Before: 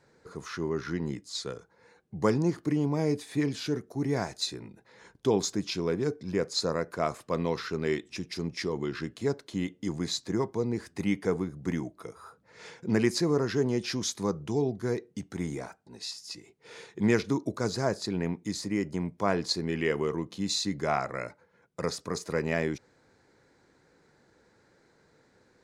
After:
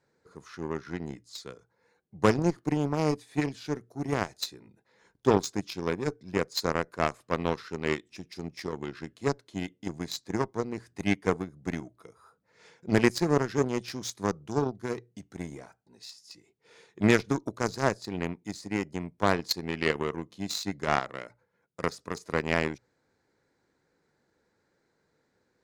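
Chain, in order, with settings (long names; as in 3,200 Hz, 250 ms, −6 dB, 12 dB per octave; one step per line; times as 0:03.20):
mains-hum notches 60/120 Hz
harmonic generator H 7 −19 dB, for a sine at −10 dBFS
level +4 dB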